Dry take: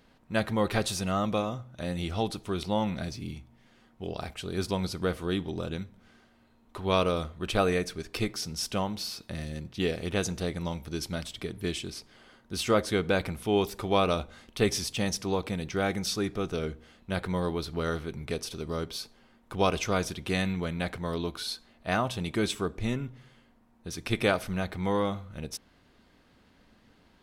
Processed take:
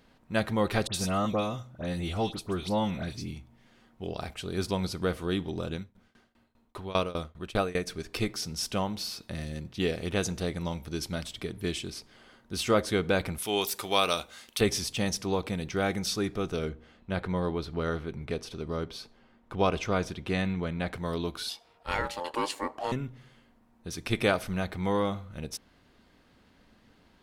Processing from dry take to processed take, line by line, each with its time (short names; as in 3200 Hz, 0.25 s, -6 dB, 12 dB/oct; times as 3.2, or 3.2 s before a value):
0.87–3.3 dispersion highs, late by 72 ms, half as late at 2300 Hz
5.75–7.87 tremolo saw down 5 Hz, depth 95%
13.38–14.61 tilt +3.5 dB/oct
16.69–20.93 LPF 2900 Hz 6 dB/oct
21.49–22.92 ring modulator 700 Hz